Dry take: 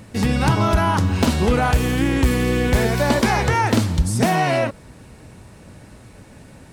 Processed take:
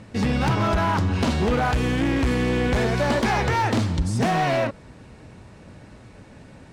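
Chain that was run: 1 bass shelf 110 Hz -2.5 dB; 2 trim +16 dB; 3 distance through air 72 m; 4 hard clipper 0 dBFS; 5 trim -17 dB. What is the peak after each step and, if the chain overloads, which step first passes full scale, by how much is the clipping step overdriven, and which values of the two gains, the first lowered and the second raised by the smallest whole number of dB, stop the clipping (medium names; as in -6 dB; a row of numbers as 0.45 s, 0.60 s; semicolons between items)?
-8.0 dBFS, +8.0 dBFS, +7.5 dBFS, 0.0 dBFS, -17.0 dBFS; step 2, 7.5 dB; step 2 +8 dB, step 5 -9 dB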